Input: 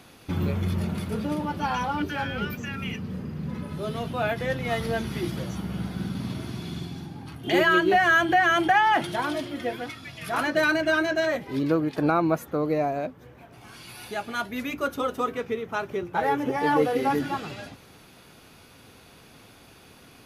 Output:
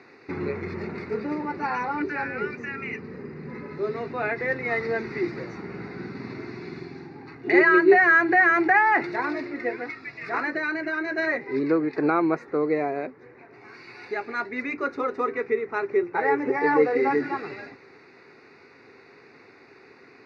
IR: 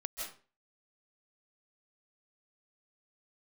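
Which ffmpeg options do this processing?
-filter_complex "[0:a]asettb=1/sr,asplit=3[a][b][c];[a]atrim=end=10.374[d];[b]atrim=start=10.37:end=11.18,asetpts=PTS-STARTPTS,afade=t=in:d=0.004:c=qsin,afade=t=out:st=0.806:d=0.004:c=qsin,acompressor=threshold=-25dB:ratio=6[e];[c]atrim=start=11.176[f];[d][e]acrossfade=d=0.004:c1=hsin:c2=qsin[g];[g][f]acrossfade=d=0.004:c1=qsin:c2=hsin,asuperstop=centerf=3200:order=4:qfactor=2.1,highpass=190,equalizer=f=190:t=q:w=4:g=-8,equalizer=f=400:t=q:w=4:g=10,equalizer=f=620:t=q:w=4:g=-6,equalizer=f=2k:t=q:w=4:g=9,lowpass=f=4.3k:w=0.5412,lowpass=f=4.3k:w=1.3066"

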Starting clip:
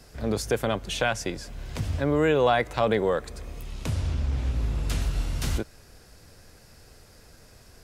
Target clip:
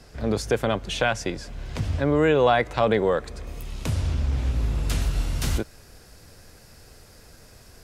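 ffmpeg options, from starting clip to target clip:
-af "asetnsamples=n=441:p=0,asendcmd='3.47 highshelf g 2.5',highshelf=f=10k:g=-11.5,volume=2.5dB"

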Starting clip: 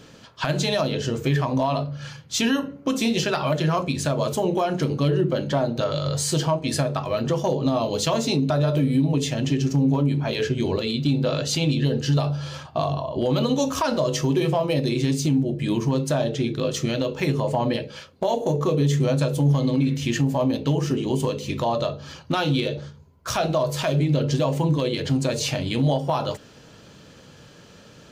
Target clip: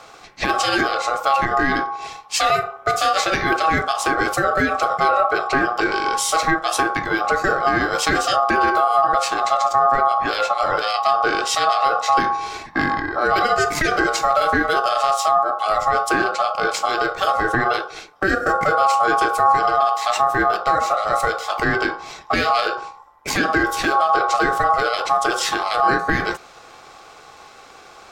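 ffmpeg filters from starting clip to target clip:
-af "acontrast=81,aeval=exprs='val(0)*sin(2*PI*960*n/s)':c=same"

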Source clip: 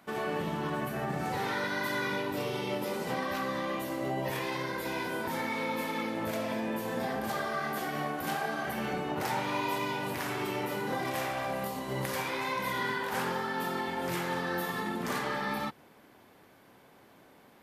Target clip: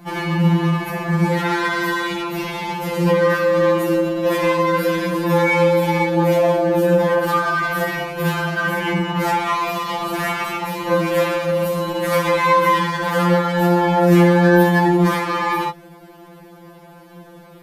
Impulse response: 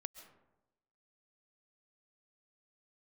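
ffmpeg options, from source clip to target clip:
-filter_complex "[0:a]lowshelf=f=210:g=4.5,asplit=2[a][b];[b]adynamicsmooth=sensitivity=8:basefreq=1.1k,volume=1dB[c];[a][c]amix=inputs=2:normalize=0,alimiter=level_in=18.5dB:limit=-1dB:release=50:level=0:latency=1,afftfilt=real='re*2.83*eq(mod(b,8),0)':imag='im*2.83*eq(mod(b,8),0)':win_size=2048:overlap=0.75,volume=-5.5dB"

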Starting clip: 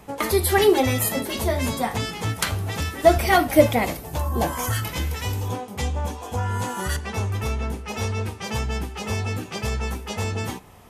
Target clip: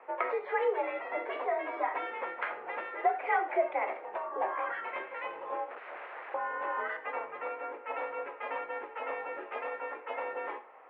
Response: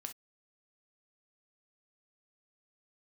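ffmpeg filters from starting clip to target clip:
-filter_complex "[0:a]asettb=1/sr,asplit=3[a][b][c];[a]atrim=end=1.514[d];[b]atrim=start=1.51:end=2.07,asetpts=PTS-STARTPTS,afade=t=in:d=0.004:c=qsin,afade=t=out:st=0.556:d=0.004:c=qsin,aecho=1:1:3.2:0.65,atrim=end_sample=24696[e];[c]atrim=start=2.066[f];[d][e]acrossfade=d=0.004:c1=hsin:c2=qsin[g];[g][f]acrossfade=d=0.004:c1=qsin:c2=hsin,acompressor=threshold=-24dB:ratio=3,asettb=1/sr,asplit=3[h][i][j];[h]atrim=end=5.694[k];[i]atrim=start=5.69:end=6.34,asetpts=PTS-STARTPTS,afade=t=in:d=0.004:c=qsin,afade=t=out:st=0.646:d=0.004:c=qsin,aeval=exprs='(mod(42.2*val(0)+1,2)-1)/42.2':c=same[l];[j]atrim=start=6.336[m];[k][l]acrossfade=d=0.004:c1=hsin:c2=qsin[n];[n][m]acrossfade=d=0.004:c1=qsin:c2=hsin,asplit=2[o][p];[1:a]atrim=start_sample=2205,asetrate=31311,aresample=44100[q];[p][q]afir=irnorm=-1:irlink=0,volume=2dB[r];[o][r]amix=inputs=2:normalize=0,highpass=f=390:t=q:w=0.5412,highpass=f=390:t=q:w=1.307,lowpass=f=2.2k:t=q:w=0.5176,lowpass=f=2.2k:t=q:w=0.7071,lowpass=f=2.2k:t=q:w=1.932,afreqshift=59,volume=-8dB"

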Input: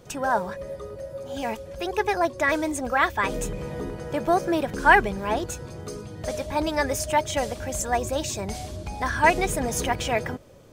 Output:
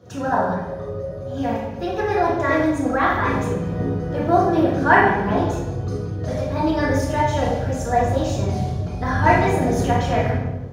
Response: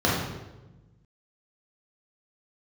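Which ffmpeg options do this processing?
-filter_complex "[1:a]atrim=start_sample=2205[a];[0:a][a]afir=irnorm=-1:irlink=0,volume=-14.5dB"

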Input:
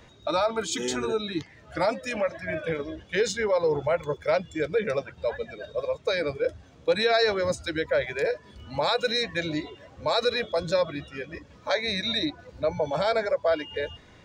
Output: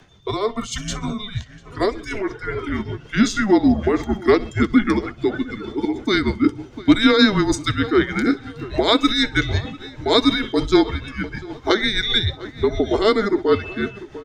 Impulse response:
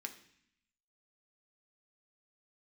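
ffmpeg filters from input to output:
-filter_complex "[0:a]afreqshift=-210,asplit=2[a][b];[b]adelay=699,lowpass=f=2.7k:p=1,volume=-17dB,asplit=2[c][d];[d]adelay=699,lowpass=f=2.7k:p=1,volume=0.38,asplit=2[e][f];[f]adelay=699,lowpass=f=2.7k:p=1,volume=0.38[g];[c][e][g]amix=inputs=3:normalize=0[h];[a][h]amix=inputs=2:normalize=0,dynaudnorm=f=410:g=13:m=7dB,asplit=2[i][j];[j]aecho=0:1:64|128|192:0.119|0.0428|0.0154[k];[i][k]amix=inputs=2:normalize=0,tremolo=f=6.5:d=0.54,volume=4dB"

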